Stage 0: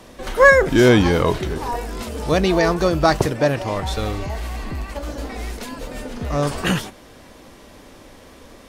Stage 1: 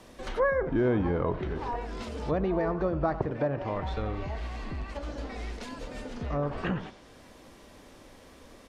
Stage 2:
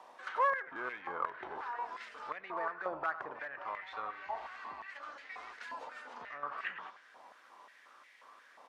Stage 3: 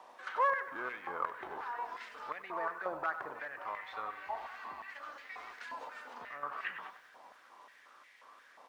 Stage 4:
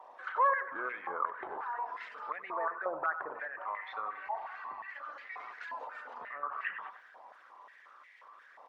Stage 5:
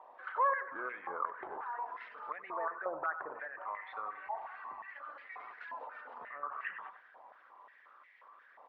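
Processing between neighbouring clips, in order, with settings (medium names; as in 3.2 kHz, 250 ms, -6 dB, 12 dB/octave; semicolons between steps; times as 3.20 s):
delay 92 ms -16 dB; compression 2:1, threshold -17 dBFS, peak gain reduction 6.5 dB; low-pass that closes with the level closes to 1.3 kHz, closed at -17.5 dBFS; trim -8 dB
hard clipper -21 dBFS, distortion -20 dB; tilt EQ -3 dB/octave; step-sequenced high-pass 5.6 Hz 880–2000 Hz; trim -5 dB
bit-crushed delay 96 ms, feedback 55%, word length 10-bit, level -15 dB
resonances exaggerated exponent 1.5; trim +2.5 dB
distance through air 250 m; trim -1.5 dB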